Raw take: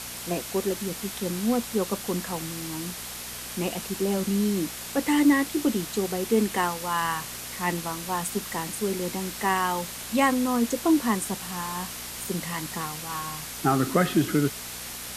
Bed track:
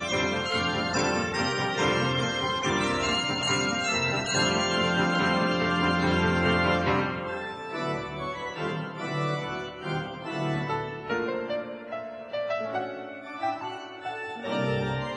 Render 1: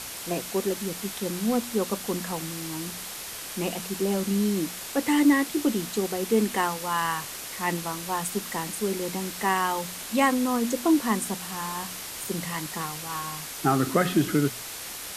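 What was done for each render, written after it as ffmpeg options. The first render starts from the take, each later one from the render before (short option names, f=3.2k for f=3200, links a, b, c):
-af "bandreject=f=60:t=h:w=4,bandreject=f=120:t=h:w=4,bandreject=f=180:t=h:w=4,bandreject=f=240:t=h:w=4"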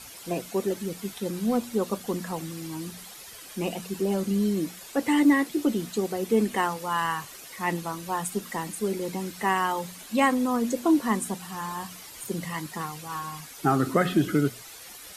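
-af "afftdn=nr=11:nf=-38"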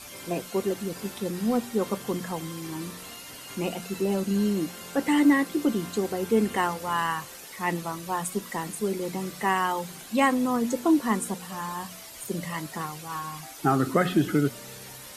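-filter_complex "[1:a]volume=-19.5dB[a];[0:a][a]amix=inputs=2:normalize=0"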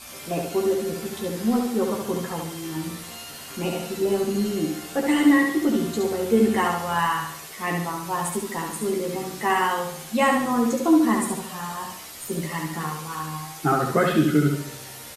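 -filter_complex "[0:a]asplit=2[a][b];[b]adelay=13,volume=-3dB[c];[a][c]amix=inputs=2:normalize=0,asplit=2[d][e];[e]aecho=0:1:70|140|210|280|350|420:0.631|0.29|0.134|0.0614|0.0283|0.013[f];[d][f]amix=inputs=2:normalize=0"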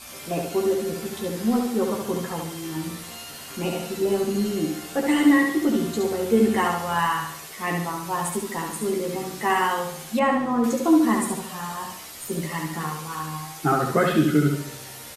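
-filter_complex "[0:a]asettb=1/sr,asplit=3[a][b][c];[a]atrim=end=10.194[d];[b]atrim=start=10.19:end=10.64,asetpts=PTS-STARTPTS,afade=t=in:d=0.004:c=qsin,afade=t=out:st=0.446:d=0.004:c=qsin,lowpass=f=1.6k:p=1[e];[c]atrim=start=10.636[f];[d][e]acrossfade=d=0.004:c1=hsin:c2=qsin[g];[g][f]acrossfade=d=0.004:c1=qsin:c2=hsin"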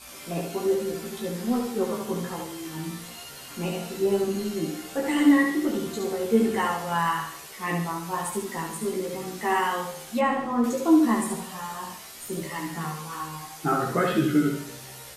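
-af "flanger=delay=15:depth=3.2:speed=1.2"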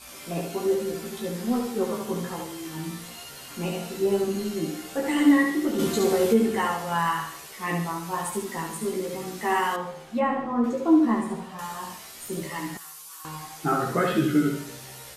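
-filter_complex "[0:a]asplit=3[a][b][c];[a]afade=t=out:st=5.78:d=0.02[d];[b]acontrast=78,afade=t=in:st=5.78:d=0.02,afade=t=out:st=6.32:d=0.02[e];[c]afade=t=in:st=6.32:d=0.02[f];[d][e][f]amix=inputs=3:normalize=0,asettb=1/sr,asplit=3[g][h][i];[g]atrim=end=9.764[j];[h]atrim=start=9.76:end=11.59,asetpts=PTS-STARTPTS,afade=t=in:d=0.004:c=qsin,afade=t=out:st=1.826:d=0.004:c=qsin,lowpass=f=1.7k:p=1[k];[i]atrim=start=11.586[l];[j][k]acrossfade=d=0.004:c1=hsin:c2=qsin[m];[m][l]acrossfade=d=0.004:c1=qsin:c2=hsin,asettb=1/sr,asplit=3[n][o][p];[n]atrim=end=12.774[q];[o]atrim=start=12.77:end=13.25,asetpts=PTS-STARTPTS,afade=t=in:d=0.004:c=qsin,afade=t=out:st=0.476:d=0.004:c=qsin,aderivative[r];[p]atrim=start=13.246[s];[q][r]acrossfade=d=0.004:c1=hsin:c2=qsin[t];[t][s]acrossfade=d=0.004:c1=qsin:c2=hsin"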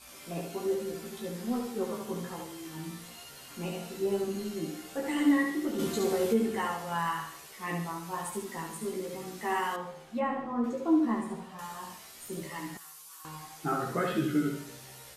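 -af "volume=-6.5dB"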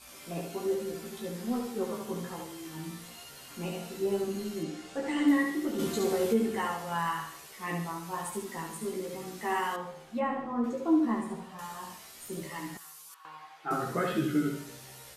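-filter_complex "[0:a]asettb=1/sr,asplit=3[a][b][c];[a]atrim=end=4.634[d];[b]atrim=start=4.63:end=5.28,asetpts=PTS-STARTPTS,afade=t=in:d=0.004:c=qsin,afade=t=out:st=0.646:d=0.004:c=qsin,lowpass=7.6k[e];[c]atrim=start=5.276[f];[d][e]acrossfade=d=0.004:c1=hsin:c2=qsin[g];[g][f]acrossfade=d=0.004:c1=qsin:c2=hsin,asettb=1/sr,asplit=3[h][i][j];[h]atrim=end=13.144[k];[i]atrim=start=13.14:end=13.71,asetpts=PTS-STARTPTS,afade=t=in:d=0.004:c=qsin,afade=t=out:st=0.566:d=0.004:c=qsin,acrossover=split=510 3600:gain=0.112 1 0.0794[l][m][n];[l][m][n]amix=inputs=3:normalize=0[o];[j]atrim=start=13.706[p];[k][o]acrossfade=d=0.004:c1=hsin:c2=qsin[q];[q][p]acrossfade=d=0.004:c1=qsin:c2=hsin"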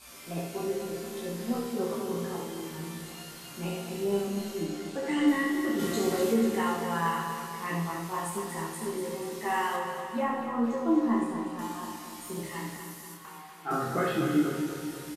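-filter_complex "[0:a]asplit=2[a][b];[b]adelay=30,volume=-4dB[c];[a][c]amix=inputs=2:normalize=0,aecho=1:1:242|484|726|968|1210|1452|1694:0.422|0.245|0.142|0.0823|0.0477|0.0277|0.0161"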